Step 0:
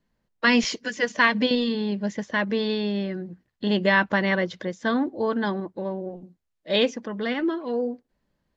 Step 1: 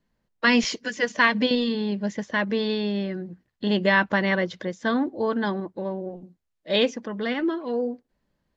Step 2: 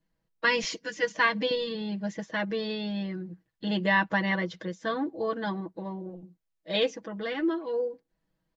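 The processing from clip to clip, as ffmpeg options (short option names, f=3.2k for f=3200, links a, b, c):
-af anull
-af "aecho=1:1:6.2:0.85,volume=-7dB"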